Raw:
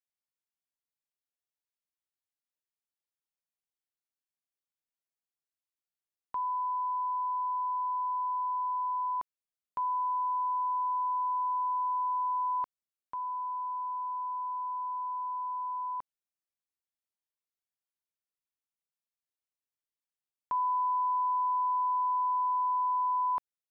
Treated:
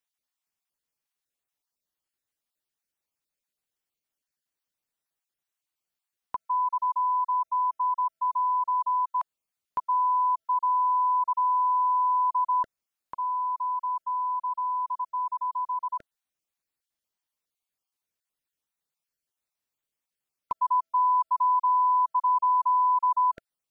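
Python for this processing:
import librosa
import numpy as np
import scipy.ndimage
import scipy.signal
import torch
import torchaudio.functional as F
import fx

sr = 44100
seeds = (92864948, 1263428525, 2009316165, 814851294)

y = fx.spec_dropout(x, sr, seeds[0], share_pct=22)
y = y * librosa.db_to_amplitude(7.0)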